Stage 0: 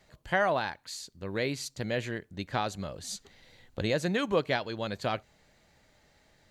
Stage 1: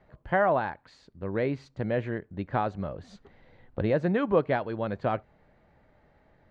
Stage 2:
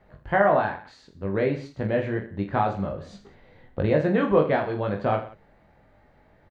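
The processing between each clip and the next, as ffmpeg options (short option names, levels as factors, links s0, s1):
-af "lowpass=1400,volume=1.58"
-af "aecho=1:1:20|46|79.8|123.7|180.9:0.631|0.398|0.251|0.158|0.1,volume=1.26"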